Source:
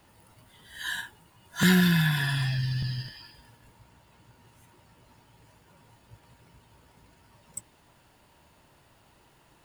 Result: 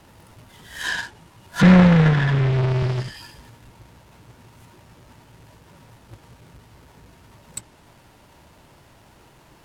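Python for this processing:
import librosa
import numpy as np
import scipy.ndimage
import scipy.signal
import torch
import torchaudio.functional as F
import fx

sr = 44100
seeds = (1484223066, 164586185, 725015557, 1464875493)

y = fx.halfwave_hold(x, sr)
y = fx.env_lowpass_down(y, sr, base_hz=2300.0, full_db=-20.5)
y = y * librosa.db_to_amplitude(4.0)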